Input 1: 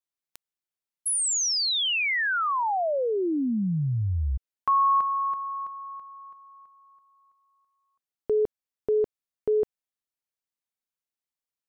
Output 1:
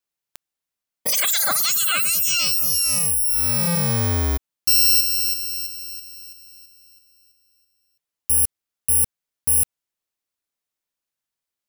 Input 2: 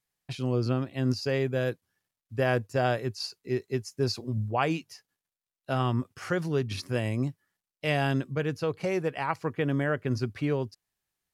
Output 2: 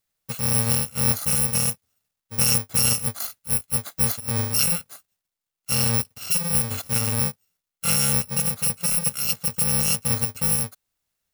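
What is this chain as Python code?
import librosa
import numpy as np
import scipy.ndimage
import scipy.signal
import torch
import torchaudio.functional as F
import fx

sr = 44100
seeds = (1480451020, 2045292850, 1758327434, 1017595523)

y = fx.bit_reversed(x, sr, seeds[0], block=128)
y = y * librosa.db_to_amplitude(5.5)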